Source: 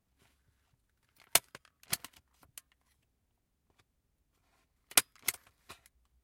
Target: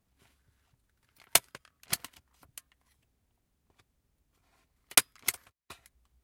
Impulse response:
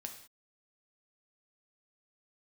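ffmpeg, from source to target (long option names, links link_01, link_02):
-filter_complex "[0:a]asettb=1/sr,asplit=3[link_01][link_02][link_03];[link_01]atrim=end=4.954[link_04];[link_02]atrim=start=4.95:end=5.71,asetpts=PTS-STARTPTS,afade=type=in:duration=0.004:curve=qsin,afade=type=out:start_time=0.756:duration=0.004:curve=qsin,agate=range=-29dB:threshold=-55dB:ratio=16:detection=peak[link_05];[link_03]atrim=start=5.706[link_06];[link_04][link_05]acrossfade=duration=0.004:curve1=hsin:curve2=qsin[link_07];[link_07][link_06]acrossfade=duration=0.004:curve1=qsin:curve2=hsin,volume=3dB"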